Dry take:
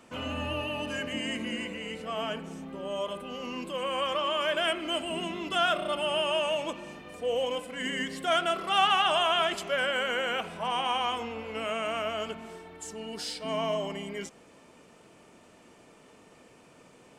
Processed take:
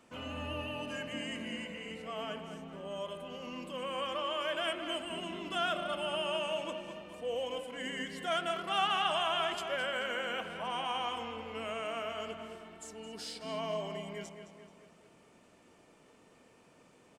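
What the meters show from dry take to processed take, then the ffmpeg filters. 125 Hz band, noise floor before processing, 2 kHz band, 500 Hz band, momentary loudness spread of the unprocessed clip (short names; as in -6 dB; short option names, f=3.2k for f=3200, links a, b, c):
-5.0 dB, -57 dBFS, -6.5 dB, -6.0 dB, 12 LU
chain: -filter_complex "[0:a]asplit=2[a][b];[b]adelay=216,lowpass=f=4.4k:p=1,volume=-8.5dB,asplit=2[c][d];[d]adelay=216,lowpass=f=4.4k:p=1,volume=0.54,asplit=2[e][f];[f]adelay=216,lowpass=f=4.4k:p=1,volume=0.54,asplit=2[g][h];[h]adelay=216,lowpass=f=4.4k:p=1,volume=0.54,asplit=2[i][j];[j]adelay=216,lowpass=f=4.4k:p=1,volume=0.54,asplit=2[k][l];[l]adelay=216,lowpass=f=4.4k:p=1,volume=0.54[m];[a][c][e][g][i][k][m]amix=inputs=7:normalize=0,volume=-7dB"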